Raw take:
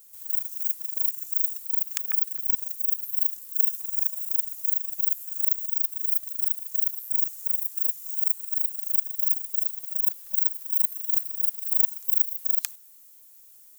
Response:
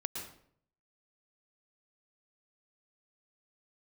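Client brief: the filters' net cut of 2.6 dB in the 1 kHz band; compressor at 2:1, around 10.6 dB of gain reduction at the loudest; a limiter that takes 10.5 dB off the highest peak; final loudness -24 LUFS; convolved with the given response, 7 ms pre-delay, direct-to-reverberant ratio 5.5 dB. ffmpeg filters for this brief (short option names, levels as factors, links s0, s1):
-filter_complex "[0:a]equalizer=f=1000:t=o:g=-3.5,acompressor=threshold=0.0141:ratio=2,alimiter=level_in=1.06:limit=0.0631:level=0:latency=1,volume=0.944,asplit=2[s0][s1];[1:a]atrim=start_sample=2205,adelay=7[s2];[s1][s2]afir=irnorm=-1:irlink=0,volume=0.473[s3];[s0][s3]amix=inputs=2:normalize=0,volume=3.16"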